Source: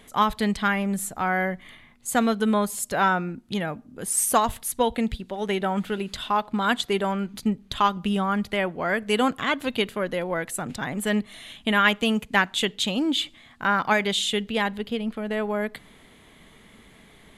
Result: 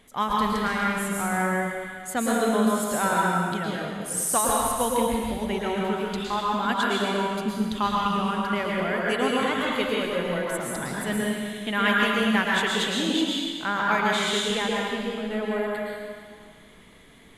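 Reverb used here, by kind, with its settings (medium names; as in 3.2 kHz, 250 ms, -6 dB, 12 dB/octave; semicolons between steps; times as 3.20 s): plate-style reverb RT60 1.8 s, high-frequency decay 1×, pre-delay 100 ms, DRR -4 dB; trim -5.5 dB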